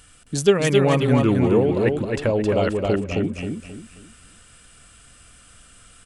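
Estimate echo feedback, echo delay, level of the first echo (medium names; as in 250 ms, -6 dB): 33%, 266 ms, -3.5 dB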